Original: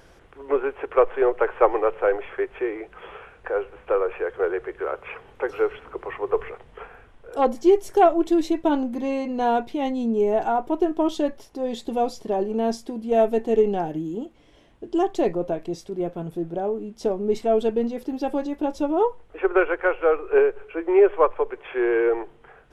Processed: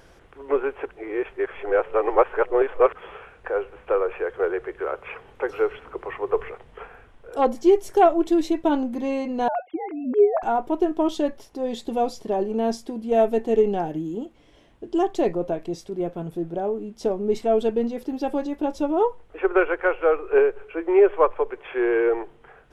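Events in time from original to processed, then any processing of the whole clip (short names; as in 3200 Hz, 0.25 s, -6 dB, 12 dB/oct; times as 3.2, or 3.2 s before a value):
0.89–2.95 reverse
9.48–10.43 sine-wave speech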